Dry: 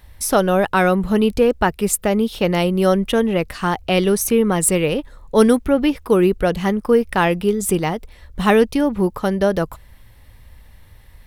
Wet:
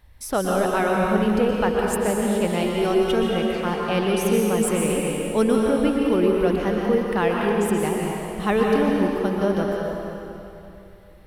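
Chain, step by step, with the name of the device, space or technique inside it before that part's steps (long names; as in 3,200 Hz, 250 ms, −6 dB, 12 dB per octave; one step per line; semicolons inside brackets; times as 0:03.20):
0:02.62–0:03.13: comb filter 2.8 ms, depth 68%
swimming-pool hall (convolution reverb RT60 2.8 s, pre-delay 114 ms, DRR −2 dB; high-shelf EQ 4,600 Hz −5 dB)
level −7.5 dB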